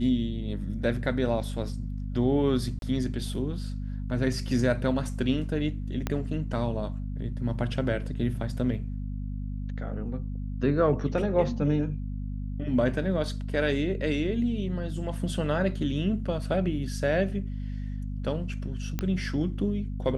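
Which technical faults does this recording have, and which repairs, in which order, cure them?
hum 50 Hz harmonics 5 -33 dBFS
2.79–2.82 gap 32 ms
6.07 pop -14 dBFS
18.99 pop -15 dBFS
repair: de-click; de-hum 50 Hz, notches 5; interpolate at 2.79, 32 ms

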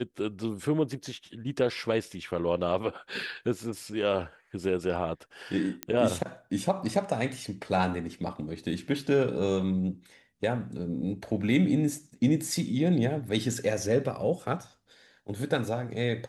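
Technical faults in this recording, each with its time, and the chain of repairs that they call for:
5.83 pop -14 dBFS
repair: de-click

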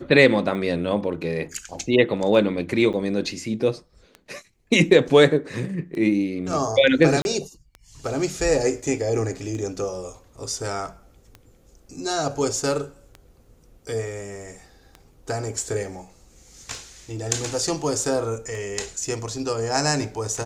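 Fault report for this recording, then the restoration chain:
tick 33 1/3 rpm -23 dBFS
2.93–2.94 gap 6.9 ms
7.22–7.25 gap 31 ms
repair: de-click; interpolate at 2.93, 6.9 ms; interpolate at 7.22, 31 ms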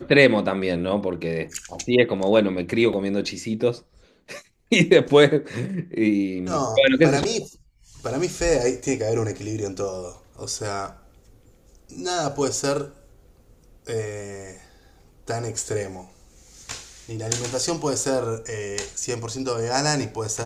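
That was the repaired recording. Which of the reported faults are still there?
none

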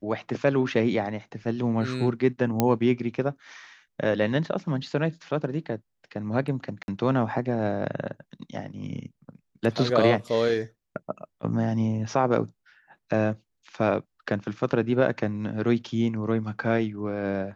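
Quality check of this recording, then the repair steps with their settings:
2.6 pop -7 dBFS
6.83–6.88 gap 51 ms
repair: de-click; interpolate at 6.83, 51 ms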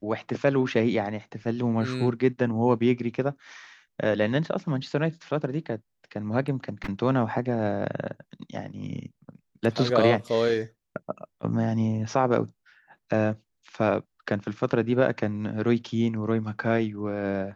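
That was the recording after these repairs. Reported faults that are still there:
none

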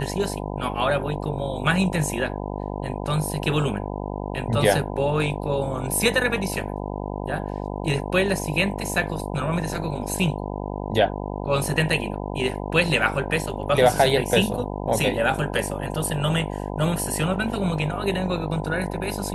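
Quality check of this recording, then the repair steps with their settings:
buzz 50 Hz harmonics 20 -30 dBFS
15.39 gap 2.1 ms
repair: de-hum 50 Hz, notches 20; interpolate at 15.39, 2.1 ms

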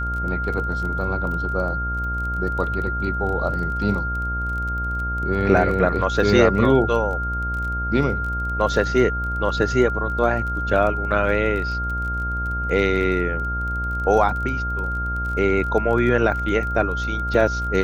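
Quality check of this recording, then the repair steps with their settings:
buzz 60 Hz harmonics 19 -27 dBFS
crackle 23/s -29 dBFS
tone 1400 Hz -25 dBFS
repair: de-click; de-hum 60 Hz, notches 19; notch 1400 Hz, Q 30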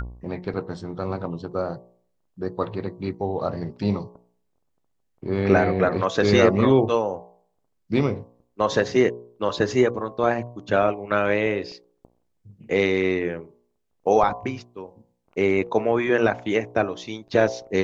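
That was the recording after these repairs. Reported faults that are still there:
none

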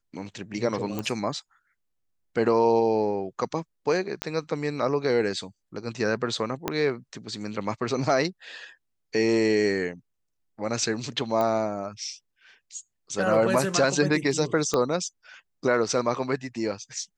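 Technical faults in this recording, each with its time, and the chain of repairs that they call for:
0.99 pop -16 dBFS
4.22 pop -12 dBFS
6.68 pop -10 dBFS
11.41 pop -15 dBFS
14.74 pop -11 dBFS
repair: de-click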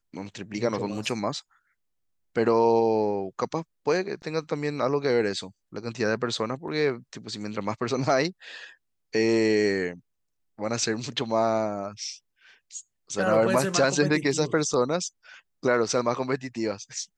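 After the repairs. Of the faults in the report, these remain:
4.22 pop
6.68 pop
11.41 pop
14.74 pop

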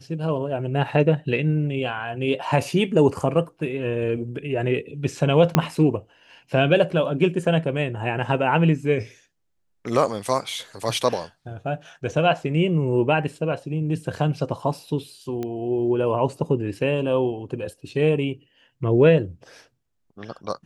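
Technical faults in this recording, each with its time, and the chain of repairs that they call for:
5.55 pop -2 dBFS
15.43 pop -17 dBFS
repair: de-click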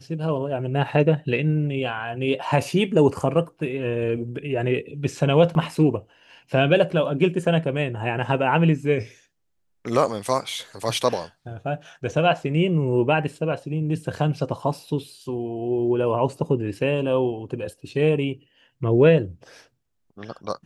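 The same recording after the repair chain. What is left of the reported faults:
5.55 pop

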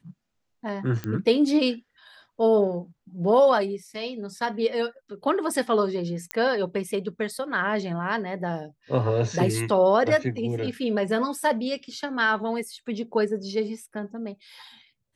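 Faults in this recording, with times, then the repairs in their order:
1.04 pop -17 dBFS
6.31 pop -11 dBFS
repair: de-click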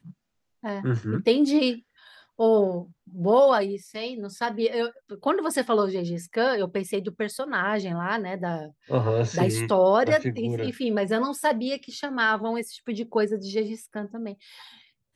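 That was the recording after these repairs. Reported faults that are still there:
none

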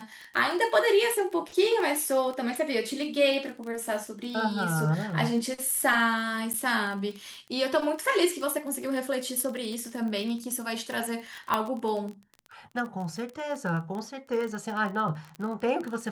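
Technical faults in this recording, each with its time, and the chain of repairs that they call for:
crackle 27/s -32 dBFS
6.53–6.54 gap 9.6 ms
11.54 pop -12 dBFS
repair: de-click; interpolate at 6.53, 9.6 ms

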